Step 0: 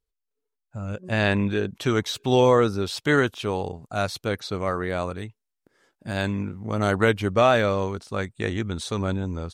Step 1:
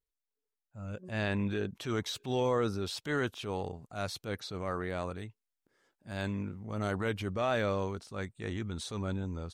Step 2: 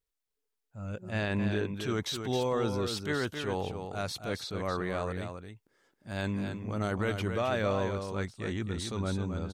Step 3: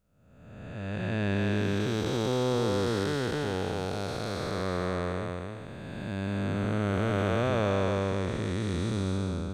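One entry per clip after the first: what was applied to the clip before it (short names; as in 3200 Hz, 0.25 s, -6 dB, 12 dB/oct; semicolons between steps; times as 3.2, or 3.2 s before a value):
limiter -12.5 dBFS, peak gain reduction 5.5 dB; transient shaper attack -7 dB, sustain +2 dB; gain -8 dB
limiter -24 dBFS, peak gain reduction 4 dB; echo 0.268 s -7 dB; gain +2.5 dB
time blur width 0.712 s; gain +6 dB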